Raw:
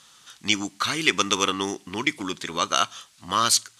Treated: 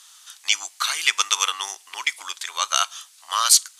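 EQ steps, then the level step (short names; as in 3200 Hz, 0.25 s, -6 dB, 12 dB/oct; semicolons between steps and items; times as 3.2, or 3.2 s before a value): HPF 730 Hz 24 dB/oct; high shelf 4100 Hz +6.5 dB; high shelf 8900 Hz +6.5 dB; -1.0 dB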